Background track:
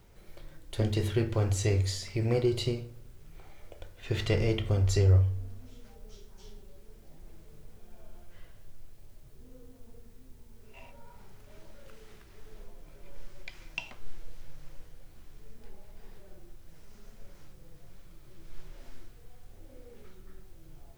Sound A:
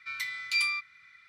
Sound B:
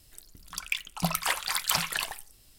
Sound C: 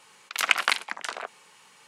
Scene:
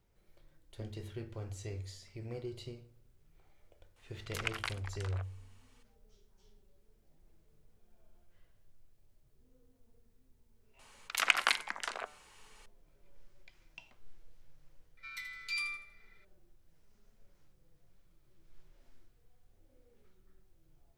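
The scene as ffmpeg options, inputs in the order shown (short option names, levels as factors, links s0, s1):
-filter_complex "[3:a]asplit=2[s0][s1];[0:a]volume=0.168[s2];[s1]bandreject=f=149.4:t=h:w=4,bandreject=f=298.8:t=h:w=4,bandreject=f=448.2:t=h:w=4,bandreject=f=597.6:t=h:w=4,bandreject=f=747:t=h:w=4,bandreject=f=896.4:t=h:w=4,bandreject=f=1045.8:t=h:w=4,bandreject=f=1195.2:t=h:w=4,bandreject=f=1344.6:t=h:w=4,bandreject=f=1494:t=h:w=4,bandreject=f=1643.4:t=h:w=4,bandreject=f=1792.8:t=h:w=4,bandreject=f=1942.2:t=h:w=4,bandreject=f=2091.6:t=h:w=4,bandreject=f=2241:t=h:w=4[s3];[1:a]aecho=1:1:80|160|240|320:0.299|0.113|0.0431|0.0164[s4];[s0]atrim=end=1.87,asetpts=PTS-STARTPTS,volume=0.168,afade=t=in:d=0.004:c=hsin,afade=t=out:st=1.866:d=0.004:c=hsin,adelay=3960[s5];[s3]atrim=end=1.87,asetpts=PTS-STARTPTS,volume=0.531,afade=t=in:d=0.004:c=hsin,afade=t=out:st=1.866:d=0.004:c=hsin,adelay=10790[s6];[s4]atrim=end=1.28,asetpts=PTS-STARTPTS,volume=0.316,afade=t=in:d=0.004:c=hsin,afade=t=out:st=1.276:d=0.004:c=hsin,adelay=14970[s7];[s2][s5][s6][s7]amix=inputs=4:normalize=0"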